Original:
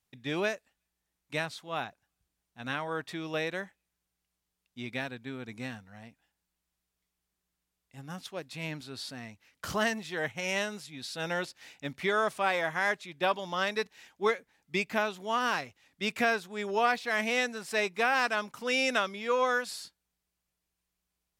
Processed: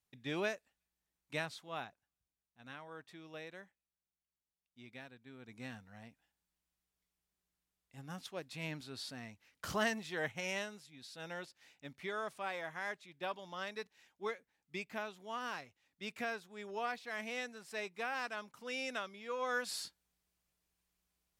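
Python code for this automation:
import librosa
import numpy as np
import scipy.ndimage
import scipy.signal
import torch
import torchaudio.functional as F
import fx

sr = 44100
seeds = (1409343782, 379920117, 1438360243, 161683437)

y = fx.gain(x, sr, db=fx.line((1.52, -6.0), (2.61, -16.0), (5.25, -16.0), (5.82, -5.0), (10.37, -5.0), (10.81, -12.5), (19.38, -12.5), (19.78, 0.0)))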